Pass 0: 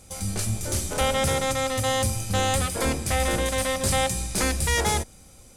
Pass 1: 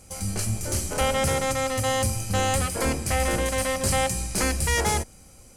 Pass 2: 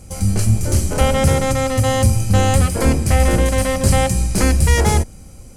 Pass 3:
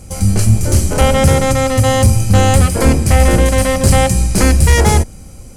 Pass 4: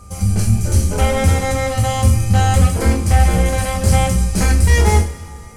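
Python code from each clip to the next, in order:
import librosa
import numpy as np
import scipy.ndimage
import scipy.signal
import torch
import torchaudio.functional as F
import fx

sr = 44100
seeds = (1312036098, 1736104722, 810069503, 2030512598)

y1 = fx.notch(x, sr, hz=3600.0, q=6.4)
y2 = fx.low_shelf(y1, sr, hz=370.0, db=10.5)
y2 = F.gain(torch.from_numpy(y2), 3.5).numpy()
y3 = np.clip(y2, -10.0 ** (-6.5 / 20.0), 10.0 ** (-6.5 / 20.0))
y3 = F.gain(torch.from_numpy(y3), 4.5).numpy()
y4 = y3 + 10.0 ** (-37.0 / 20.0) * np.sin(2.0 * np.pi * 1200.0 * np.arange(len(y3)) / sr)
y4 = fx.rev_double_slope(y4, sr, seeds[0], early_s=0.33, late_s=2.4, knee_db=-19, drr_db=0.0)
y4 = F.gain(torch.from_numpy(y4), -8.5).numpy()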